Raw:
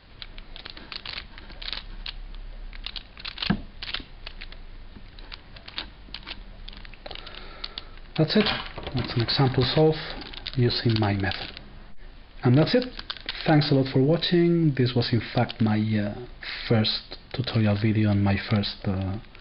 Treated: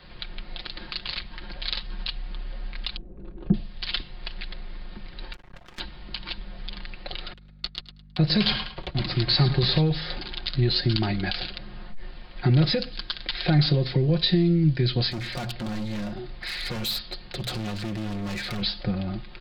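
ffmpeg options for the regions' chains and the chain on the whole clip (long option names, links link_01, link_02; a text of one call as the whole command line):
ffmpeg -i in.wav -filter_complex "[0:a]asettb=1/sr,asplit=3[link_01][link_02][link_03];[link_01]atrim=end=2.964[link_04];[link_02]atrim=start=2.96:end=3.54,asetpts=PTS-STARTPTS,afade=type=in:duration=0.004:curve=qsin,afade=type=out:start_time=0.576:duration=0.004:curve=qsin,lowpass=frequency=370:width_type=q:width=2.5,asplit=2[link_05][link_06];[link_06]adelay=21,volume=-14dB[link_07];[link_05][link_07]amix=inputs=2:normalize=0,atrim=end_sample=25578[link_08];[link_03]atrim=start=3.536[link_09];[link_04][link_08]acrossfade=duration=0.004:curve1=hsin:curve2=qsin[link_10];[link_10][link_09]acrossfade=duration=0.004:curve1=qsin:curve2=hsin,asettb=1/sr,asplit=3[link_11][link_12][link_13];[link_11]atrim=end=5.334[link_14];[link_12]atrim=start=5.33:end=5.8,asetpts=PTS-STARTPTS,afade=type=in:duration=0.004:curve=qsin,afade=type=out:start_time=0.466:duration=0.004:curve=qsin,lowpass=2000,aeval=exprs='max(val(0),0)':channel_layout=same[link_15];[link_13]atrim=start=5.796[link_16];[link_14][link_15]acrossfade=duration=0.004:curve1=hsin:curve2=qsin[link_17];[link_17][link_16]acrossfade=duration=0.004:curve1=qsin:curve2=hsin,asettb=1/sr,asplit=3[link_18][link_19][link_20];[link_18]atrim=end=7.334[link_21];[link_19]atrim=start=7.33:end=9.8,asetpts=PTS-STARTPTS,afade=type=in:duration=0.004:curve=qsin,afade=type=out:start_time=2.466:duration=0.004:curve=qsin,agate=range=-34dB:threshold=-36dB:ratio=16:release=100:detection=peak,aeval=exprs='val(0)+0.00282*(sin(2*PI*50*n/s)+sin(2*PI*2*50*n/s)/2+sin(2*PI*3*50*n/s)/3+sin(2*PI*4*50*n/s)/4+sin(2*PI*5*50*n/s)/5)':channel_layout=same,aecho=1:1:107|214|321:0.224|0.056|0.014,atrim=end_sample=108927[link_22];[link_20]atrim=start=9.796[link_23];[link_21][link_22]acrossfade=duration=0.004:curve1=hsin:curve2=qsin[link_24];[link_24][link_23]acrossfade=duration=0.004:curve1=qsin:curve2=hsin,asettb=1/sr,asplit=3[link_25][link_26][link_27];[link_25]atrim=end=15.104[link_28];[link_26]atrim=start=15.1:end=18.62,asetpts=PTS-STARTPTS,afade=type=in:duration=0.004:curve=qsin,afade=type=out:start_time=3.516:duration=0.004:curve=qsin,bandreject=frequency=60:width_type=h:width=6,bandreject=frequency=120:width_type=h:width=6,bandreject=frequency=180:width_type=h:width=6,volume=29dB,asoftclip=hard,volume=-29dB[link_29];[link_27]atrim=start=18.616[link_30];[link_28][link_29]acrossfade=duration=0.004:curve1=hsin:curve2=qsin[link_31];[link_31][link_30]acrossfade=duration=0.004:curve1=qsin:curve2=hsin,aecho=1:1:5.6:0.58,acrossover=split=160|3000[link_32][link_33][link_34];[link_33]acompressor=threshold=-46dB:ratio=1.5[link_35];[link_32][link_35][link_34]amix=inputs=3:normalize=0,volume=3dB" out.wav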